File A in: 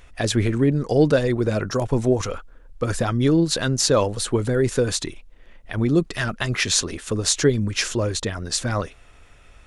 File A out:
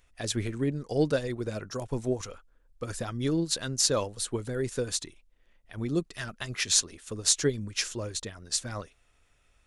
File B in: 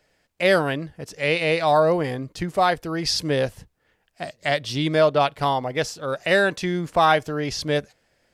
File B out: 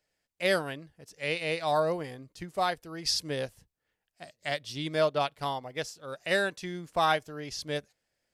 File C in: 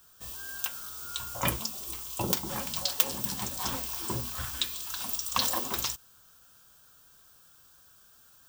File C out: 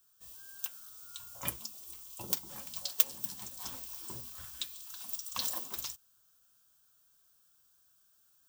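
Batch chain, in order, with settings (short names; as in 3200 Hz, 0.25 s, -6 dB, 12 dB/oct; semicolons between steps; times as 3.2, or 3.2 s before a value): high shelf 3800 Hz +8 dB; upward expander 1.5:1, over -31 dBFS; gain -8 dB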